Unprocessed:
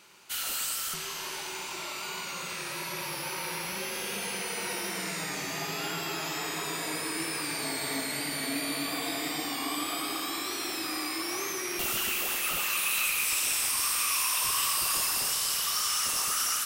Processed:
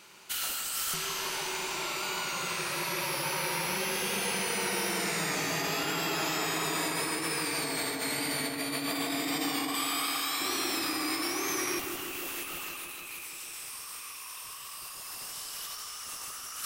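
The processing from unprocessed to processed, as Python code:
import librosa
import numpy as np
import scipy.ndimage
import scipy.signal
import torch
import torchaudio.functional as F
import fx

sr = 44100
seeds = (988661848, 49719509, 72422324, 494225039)

y = fx.highpass(x, sr, hz=940.0, slope=12, at=(9.74, 10.4))
y = fx.over_compress(y, sr, threshold_db=-34.0, ratio=-0.5)
y = fx.echo_filtered(y, sr, ms=158, feedback_pct=77, hz=2000.0, wet_db=-6)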